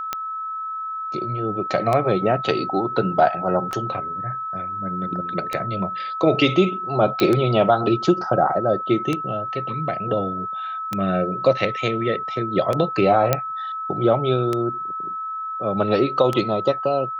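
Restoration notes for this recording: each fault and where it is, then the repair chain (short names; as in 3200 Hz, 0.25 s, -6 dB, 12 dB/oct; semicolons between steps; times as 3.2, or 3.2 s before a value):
tick 33 1/3 rpm -9 dBFS
tone 1300 Hz -26 dBFS
3.71 gap 4.2 ms
7.2 pop -7 dBFS
13.33 pop -3 dBFS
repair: de-click; notch 1300 Hz, Q 30; interpolate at 3.71, 4.2 ms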